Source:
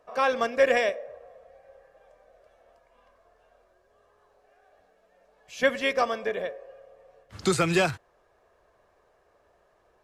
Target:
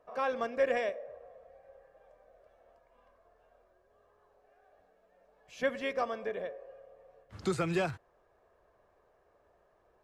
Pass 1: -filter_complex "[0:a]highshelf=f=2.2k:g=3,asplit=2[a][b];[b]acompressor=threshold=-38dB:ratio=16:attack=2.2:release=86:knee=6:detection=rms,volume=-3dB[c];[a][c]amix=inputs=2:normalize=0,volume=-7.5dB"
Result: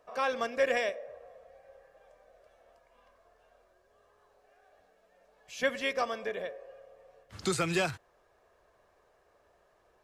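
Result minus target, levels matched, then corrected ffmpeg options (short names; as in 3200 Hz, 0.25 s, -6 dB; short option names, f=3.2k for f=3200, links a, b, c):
4000 Hz band +6.0 dB
-filter_complex "[0:a]highshelf=f=2.2k:g=-8.5,asplit=2[a][b];[b]acompressor=threshold=-38dB:ratio=16:attack=2.2:release=86:knee=6:detection=rms,volume=-3dB[c];[a][c]amix=inputs=2:normalize=0,volume=-7.5dB"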